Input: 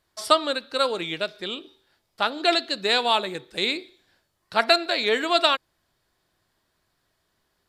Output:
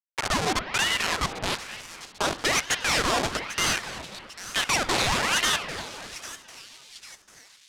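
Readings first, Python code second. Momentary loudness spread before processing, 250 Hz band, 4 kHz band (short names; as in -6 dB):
10 LU, -2.0 dB, -2.0 dB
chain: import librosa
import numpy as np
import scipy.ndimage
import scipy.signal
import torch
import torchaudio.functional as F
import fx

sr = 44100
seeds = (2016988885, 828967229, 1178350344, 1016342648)

y = fx.schmitt(x, sr, flips_db=-27.0)
y = scipy.signal.sosfilt(scipy.signal.butter(2, 6700.0, 'lowpass', fs=sr, output='sos'), y)
y = fx.bass_treble(y, sr, bass_db=-14, treble_db=7)
y = fx.echo_split(y, sr, split_hz=2600.0, low_ms=254, high_ms=796, feedback_pct=52, wet_db=-12.0)
y = fx.rev_spring(y, sr, rt60_s=2.0, pass_ms=(46,), chirp_ms=70, drr_db=12.5)
y = fx.ring_lfo(y, sr, carrier_hz=1300.0, swing_pct=90, hz=1.1)
y = y * librosa.db_to_amplitude(6.5)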